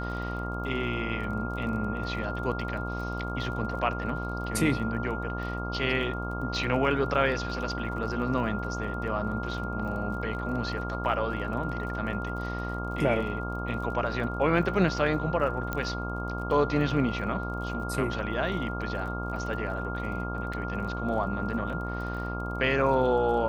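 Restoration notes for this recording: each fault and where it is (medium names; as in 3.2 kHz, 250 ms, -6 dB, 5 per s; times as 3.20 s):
buzz 60 Hz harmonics 23 -34 dBFS
crackle 33 per s -39 dBFS
whine 1.4 kHz -36 dBFS
15.73 s: pop -16 dBFS
20.53–20.54 s: dropout 5.2 ms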